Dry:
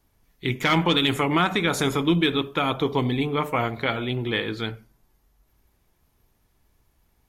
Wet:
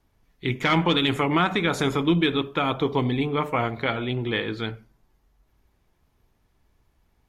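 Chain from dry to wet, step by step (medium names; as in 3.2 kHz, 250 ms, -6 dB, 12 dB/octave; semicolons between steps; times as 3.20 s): treble shelf 7.4 kHz -12 dB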